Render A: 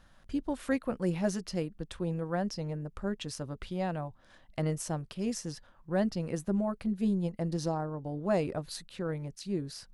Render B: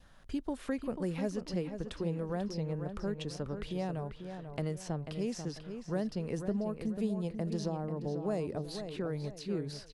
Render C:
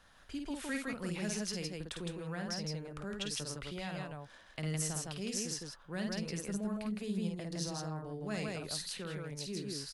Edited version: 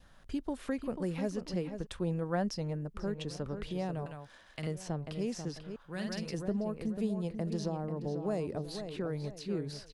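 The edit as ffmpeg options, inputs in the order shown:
-filter_complex "[2:a]asplit=2[a][b];[1:a]asplit=4[c][d][e][f];[c]atrim=end=1.87[g];[0:a]atrim=start=1.83:end=2.98[h];[d]atrim=start=2.94:end=4.062[i];[a]atrim=start=4.058:end=4.672[j];[e]atrim=start=4.668:end=5.762[k];[b]atrim=start=5.758:end=6.342[l];[f]atrim=start=6.338[m];[g][h]acrossfade=d=0.04:c1=tri:c2=tri[n];[n][i]acrossfade=d=0.04:c1=tri:c2=tri[o];[o][j]acrossfade=d=0.004:c1=hsin:c2=hsin[p];[p][k]acrossfade=d=0.004:c1=hsin:c2=hsin[q];[q][l]acrossfade=d=0.004:c1=hsin:c2=hsin[r];[r][m]acrossfade=d=0.004:c1=hsin:c2=hsin"

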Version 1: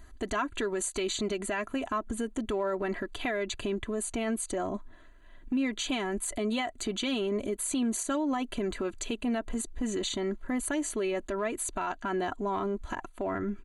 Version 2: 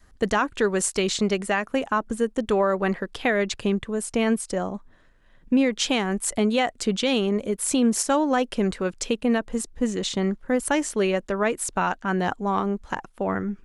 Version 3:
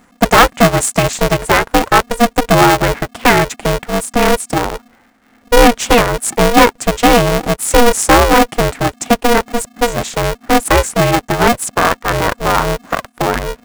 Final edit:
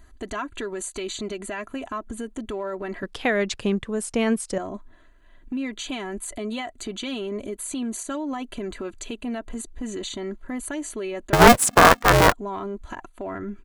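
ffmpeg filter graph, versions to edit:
-filter_complex "[0:a]asplit=3[a][b][c];[a]atrim=end=3.032[d];[1:a]atrim=start=3.028:end=4.582[e];[b]atrim=start=4.578:end=11.332[f];[2:a]atrim=start=11.328:end=12.322[g];[c]atrim=start=12.318[h];[d][e]acrossfade=d=0.004:c1=hsin:c2=hsin[i];[i][f]acrossfade=d=0.004:c1=hsin:c2=hsin[j];[j][g]acrossfade=d=0.004:c1=hsin:c2=hsin[k];[k][h]acrossfade=d=0.004:c1=hsin:c2=hsin"

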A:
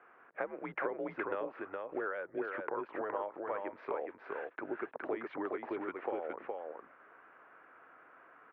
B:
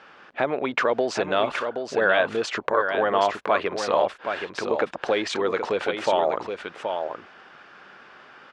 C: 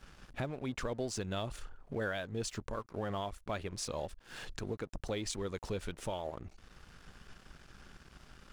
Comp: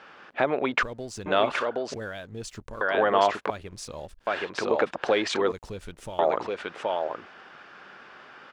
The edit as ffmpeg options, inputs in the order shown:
-filter_complex "[2:a]asplit=4[a][b][c][d];[1:a]asplit=5[e][f][g][h][i];[e]atrim=end=0.832[j];[a]atrim=start=0.828:end=1.262[k];[f]atrim=start=1.258:end=1.942[l];[b]atrim=start=1.938:end=2.812[m];[g]atrim=start=2.808:end=3.502[n];[c]atrim=start=3.498:end=4.272[o];[h]atrim=start=4.268:end=5.522[p];[d]atrim=start=5.518:end=6.192[q];[i]atrim=start=6.188[r];[j][k]acrossfade=d=0.004:c1=hsin:c2=hsin[s];[s][l]acrossfade=d=0.004:c1=hsin:c2=hsin[t];[t][m]acrossfade=d=0.004:c1=hsin:c2=hsin[u];[u][n]acrossfade=d=0.004:c1=hsin:c2=hsin[v];[v][o]acrossfade=d=0.004:c1=hsin:c2=hsin[w];[w][p]acrossfade=d=0.004:c1=hsin:c2=hsin[x];[x][q]acrossfade=d=0.004:c1=hsin:c2=hsin[y];[y][r]acrossfade=d=0.004:c1=hsin:c2=hsin"

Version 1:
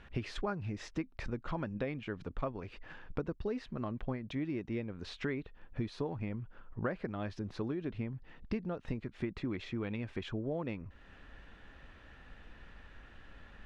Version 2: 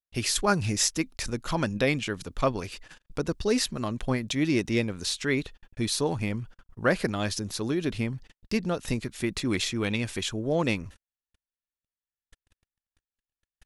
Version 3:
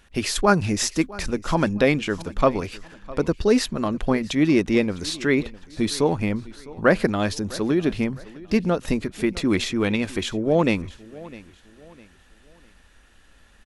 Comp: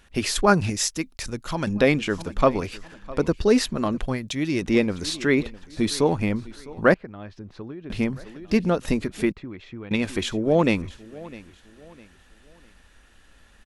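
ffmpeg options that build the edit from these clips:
-filter_complex "[1:a]asplit=2[a][b];[0:a]asplit=2[c][d];[2:a]asplit=5[e][f][g][h][i];[e]atrim=end=0.702[j];[a]atrim=start=0.698:end=1.672[k];[f]atrim=start=1.668:end=4.062[l];[b]atrim=start=4.058:end=4.622[m];[g]atrim=start=4.618:end=6.942[n];[c]atrim=start=6.938:end=7.902[o];[h]atrim=start=7.898:end=9.322[p];[d]atrim=start=9.318:end=9.912[q];[i]atrim=start=9.908[r];[j][k]acrossfade=d=0.004:c1=hsin:c2=hsin[s];[s][l]acrossfade=d=0.004:c1=hsin:c2=hsin[t];[t][m]acrossfade=d=0.004:c1=hsin:c2=hsin[u];[u][n]acrossfade=d=0.004:c1=hsin:c2=hsin[v];[v][o]acrossfade=d=0.004:c1=hsin:c2=hsin[w];[w][p]acrossfade=d=0.004:c1=hsin:c2=hsin[x];[x][q]acrossfade=d=0.004:c1=hsin:c2=hsin[y];[y][r]acrossfade=d=0.004:c1=hsin:c2=hsin"

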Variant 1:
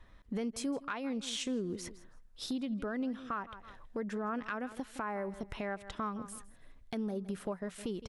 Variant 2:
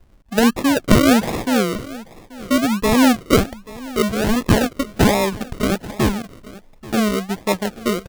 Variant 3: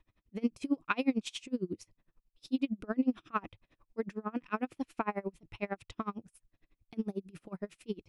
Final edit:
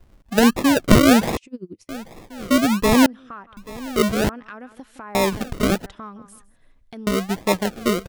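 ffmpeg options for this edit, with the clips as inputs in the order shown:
-filter_complex "[0:a]asplit=3[a][b][c];[1:a]asplit=5[d][e][f][g][h];[d]atrim=end=1.372[i];[2:a]atrim=start=1.368:end=1.892[j];[e]atrim=start=1.888:end=3.062[k];[a]atrim=start=3.058:end=3.572[l];[f]atrim=start=3.568:end=4.292[m];[b]atrim=start=4.288:end=5.152[n];[g]atrim=start=5.148:end=5.862[o];[c]atrim=start=5.858:end=7.072[p];[h]atrim=start=7.068[q];[i][j]acrossfade=d=0.004:c1=hsin:c2=hsin[r];[r][k]acrossfade=d=0.004:c1=hsin:c2=hsin[s];[s][l]acrossfade=d=0.004:c1=hsin:c2=hsin[t];[t][m]acrossfade=d=0.004:c1=hsin:c2=hsin[u];[u][n]acrossfade=d=0.004:c1=hsin:c2=hsin[v];[v][o]acrossfade=d=0.004:c1=hsin:c2=hsin[w];[w][p]acrossfade=d=0.004:c1=hsin:c2=hsin[x];[x][q]acrossfade=d=0.004:c1=hsin:c2=hsin"

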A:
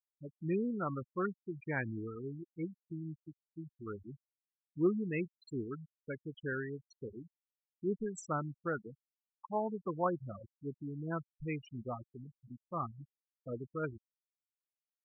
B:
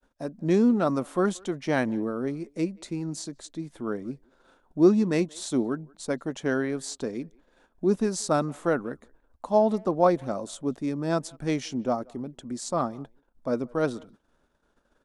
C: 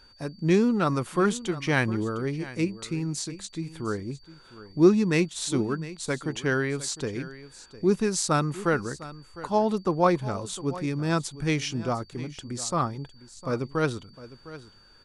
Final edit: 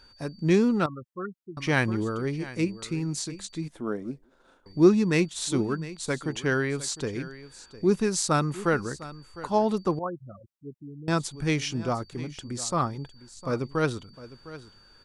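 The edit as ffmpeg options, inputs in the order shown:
-filter_complex "[0:a]asplit=2[a][b];[2:a]asplit=4[c][d][e][f];[c]atrim=end=0.862[g];[a]atrim=start=0.858:end=1.572[h];[d]atrim=start=1.568:end=3.682[i];[1:a]atrim=start=3.678:end=4.662[j];[e]atrim=start=4.658:end=9.992[k];[b]atrim=start=9.988:end=11.082[l];[f]atrim=start=11.078[m];[g][h]acrossfade=d=0.004:c1=hsin:c2=hsin[n];[n][i]acrossfade=d=0.004:c1=hsin:c2=hsin[o];[o][j]acrossfade=d=0.004:c1=hsin:c2=hsin[p];[p][k]acrossfade=d=0.004:c1=hsin:c2=hsin[q];[q][l]acrossfade=d=0.004:c1=hsin:c2=hsin[r];[r][m]acrossfade=d=0.004:c1=hsin:c2=hsin"

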